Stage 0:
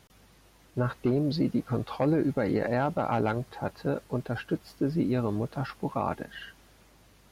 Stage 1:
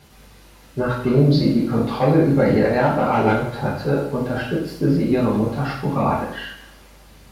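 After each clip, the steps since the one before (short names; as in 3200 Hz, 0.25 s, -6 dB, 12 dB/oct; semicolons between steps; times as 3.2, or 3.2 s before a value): phaser 0.84 Hz, delay 4.4 ms, feedback 24%; two-slope reverb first 0.65 s, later 2 s, from -25 dB, DRR -6.5 dB; gain +3 dB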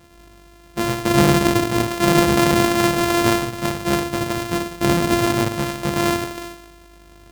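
sample sorter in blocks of 128 samples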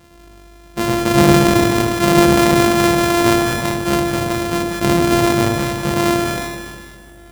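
echo with dull and thin repeats by turns 0.101 s, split 830 Hz, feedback 77%, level -7 dB; sustainer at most 30 dB/s; gain +1.5 dB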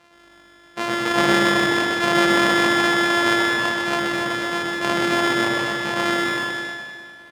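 band-pass 1700 Hz, Q 0.53; on a send: loudspeakers at several distances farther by 43 m -2 dB, 93 m -7 dB; on the sum: gain -1 dB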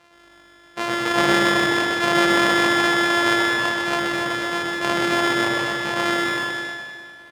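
bell 220 Hz -4 dB 0.63 oct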